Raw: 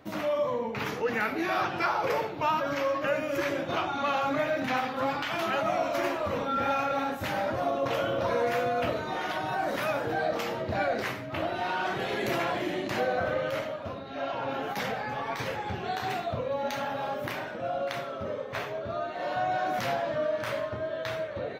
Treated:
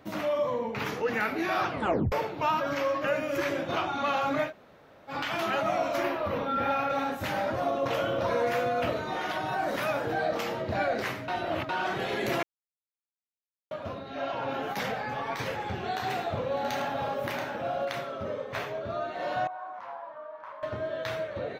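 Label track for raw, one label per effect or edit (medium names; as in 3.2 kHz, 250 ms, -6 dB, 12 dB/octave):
1.680000	1.680000	tape stop 0.44 s
4.480000	5.120000	room tone, crossfade 0.10 s
6.030000	6.900000	peaking EQ 7.6 kHz -14.5 dB 0.73 oct
11.280000	11.690000	reverse
12.430000	13.710000	mute
15.490000	17.850000	multi-tap echo 107/607/681 ms -13/-16.5/-8 dB
19.470000	20.630000	band-pass filter 1 kHz, Q 5.2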